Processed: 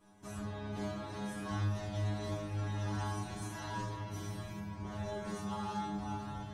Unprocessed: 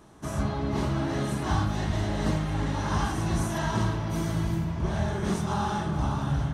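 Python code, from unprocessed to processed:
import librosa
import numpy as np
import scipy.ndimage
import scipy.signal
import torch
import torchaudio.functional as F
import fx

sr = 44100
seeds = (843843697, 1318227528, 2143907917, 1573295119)

y = 10.0 ** (-21.0 / 20.0) * np.tanh(x / 10.0 ** (-21.0 / 20.0))
y = fx.stiff_resonator(y, sr, f0_hz=100.0, decay_s=0.79, stiffness=0.002)
y = y * 10.0 ** (4.5 / 20.0)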